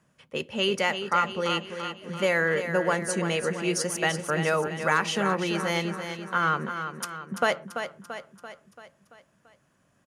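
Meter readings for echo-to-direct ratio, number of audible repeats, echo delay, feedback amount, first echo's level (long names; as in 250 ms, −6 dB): −7.0 dB, 5, 338 ms, 54%, −8.5 dB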